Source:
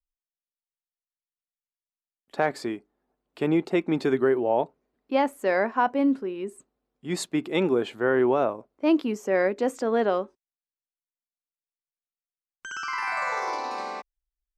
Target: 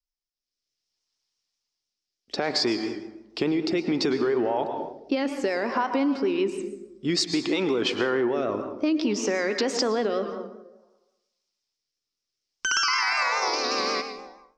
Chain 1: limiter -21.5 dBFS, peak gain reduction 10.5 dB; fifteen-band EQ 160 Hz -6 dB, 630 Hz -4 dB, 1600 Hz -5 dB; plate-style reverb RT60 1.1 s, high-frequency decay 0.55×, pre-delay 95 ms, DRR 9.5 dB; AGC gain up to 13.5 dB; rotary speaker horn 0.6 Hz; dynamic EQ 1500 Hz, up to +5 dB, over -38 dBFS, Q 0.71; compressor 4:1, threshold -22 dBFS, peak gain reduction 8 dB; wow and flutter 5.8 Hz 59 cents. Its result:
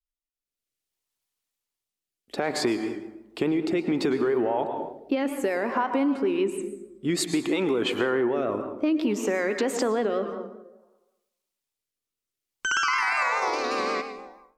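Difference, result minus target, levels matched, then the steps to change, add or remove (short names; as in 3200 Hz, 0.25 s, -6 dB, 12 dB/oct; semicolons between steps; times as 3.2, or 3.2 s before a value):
4000 Hz band -6.0 dB
add after dynamic EQ: synth low-pass 5300 Hz, resonance Q 5.2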